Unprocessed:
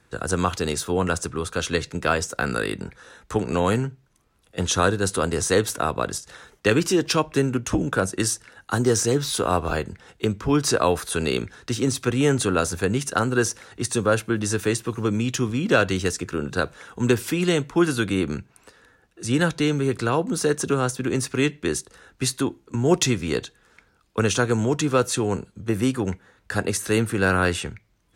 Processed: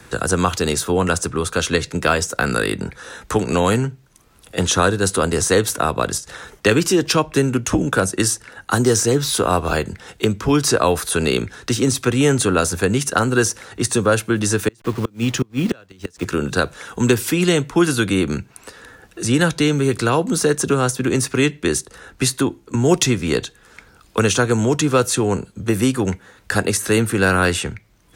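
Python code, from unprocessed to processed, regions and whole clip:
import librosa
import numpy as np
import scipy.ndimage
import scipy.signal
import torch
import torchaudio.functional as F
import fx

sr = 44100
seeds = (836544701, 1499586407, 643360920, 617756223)

y = fx.chain(x, sr, fx.delta_hold(step_db=-38.0),
    fx.high_shelf(hz=6800.0, db=-11.0),
    fx.gate_flip(shuts_db=-13.0, range_db=-33), at=(14.68, 16.25))
y = fx.high_shelf(y, sr, hz=7300.0, db=4.5)
y = fx.band_squash(y, sr, depth_pct=40)
y = F.gain(torch.from_numpy(y), 4.5).numpy()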